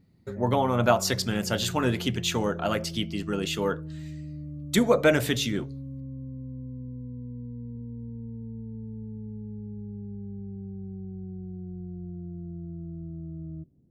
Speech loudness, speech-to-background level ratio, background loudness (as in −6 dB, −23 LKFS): −26.0 LKFS, 13.0 dB, −39.0 LKFS